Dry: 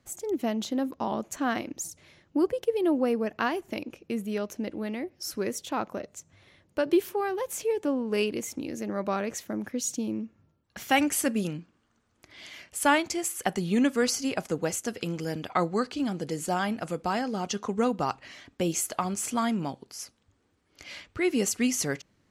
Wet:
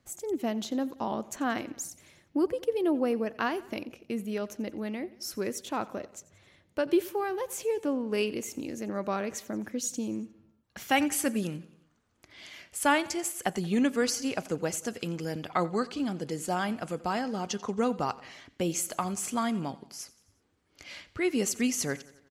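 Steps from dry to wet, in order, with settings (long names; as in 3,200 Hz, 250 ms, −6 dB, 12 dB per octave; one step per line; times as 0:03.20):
repeating echo 89 ms, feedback 56%, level −20 dB
level −2 dB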